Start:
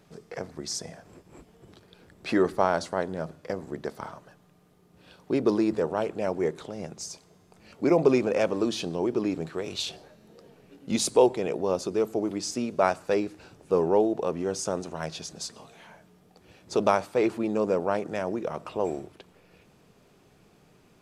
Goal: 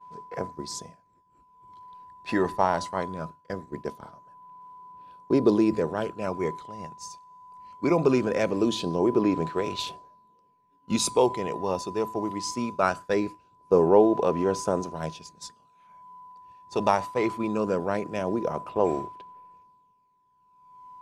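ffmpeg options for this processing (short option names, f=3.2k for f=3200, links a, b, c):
-af "aeval=exprs='val(0)+0.0141*sin(2*PI*1000*n/s)':c=same,aphaser=in_gain=1:out_gain=1:delay=1.1:decay=0.4:speed=0.21:type=sinusoidal,agate=range=-33dB:threshold=-28dB:ratio=3:detection=peak"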